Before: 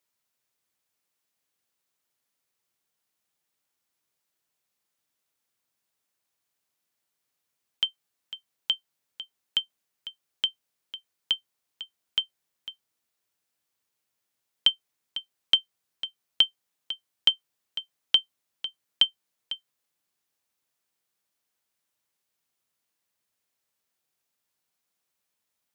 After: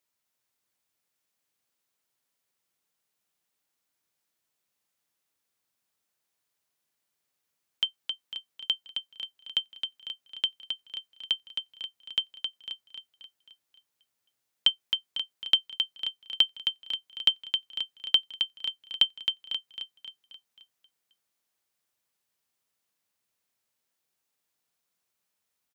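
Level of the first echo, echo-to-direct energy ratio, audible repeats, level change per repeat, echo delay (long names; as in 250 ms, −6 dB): −6.0 dB, −4.5 dB, 5, −6.0 dB, 266 ms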